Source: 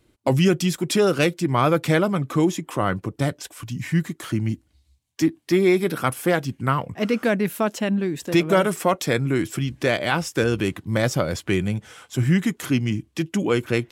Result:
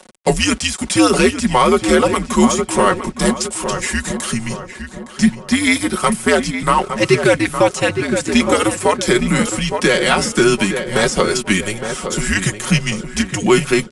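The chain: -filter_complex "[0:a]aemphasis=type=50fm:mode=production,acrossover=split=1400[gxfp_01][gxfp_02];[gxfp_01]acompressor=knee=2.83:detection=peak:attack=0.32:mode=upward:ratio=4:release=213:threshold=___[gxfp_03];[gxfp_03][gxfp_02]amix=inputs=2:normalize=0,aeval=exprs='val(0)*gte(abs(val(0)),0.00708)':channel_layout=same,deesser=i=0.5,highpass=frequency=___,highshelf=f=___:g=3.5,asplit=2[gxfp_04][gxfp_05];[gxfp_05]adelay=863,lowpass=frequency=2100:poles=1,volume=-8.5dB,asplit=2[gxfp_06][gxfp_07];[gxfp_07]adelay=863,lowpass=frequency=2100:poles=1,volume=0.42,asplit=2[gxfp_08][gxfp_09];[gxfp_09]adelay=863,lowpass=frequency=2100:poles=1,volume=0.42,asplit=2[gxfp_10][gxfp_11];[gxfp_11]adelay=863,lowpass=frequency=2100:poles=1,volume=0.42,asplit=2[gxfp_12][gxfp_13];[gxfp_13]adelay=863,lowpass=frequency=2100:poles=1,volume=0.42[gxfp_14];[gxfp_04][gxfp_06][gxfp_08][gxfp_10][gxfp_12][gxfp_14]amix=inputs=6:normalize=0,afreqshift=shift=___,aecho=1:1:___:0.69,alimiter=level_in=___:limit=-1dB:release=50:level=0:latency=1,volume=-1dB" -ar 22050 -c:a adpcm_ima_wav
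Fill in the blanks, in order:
-37dB, 330, 5000, -100, 5.4, 10dB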